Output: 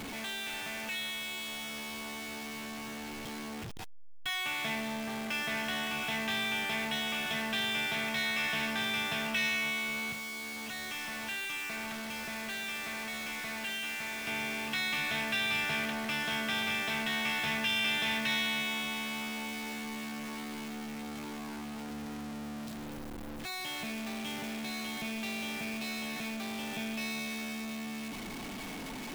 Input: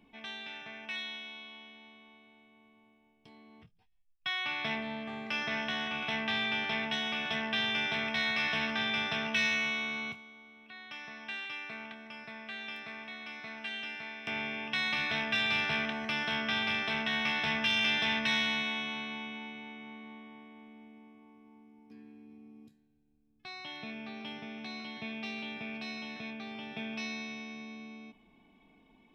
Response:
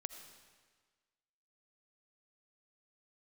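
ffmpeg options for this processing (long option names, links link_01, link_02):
-af "aeval=exprs='val(0)+0.5*0.0266*sgn(val(0))':channel_layout=same,volume=-4dB"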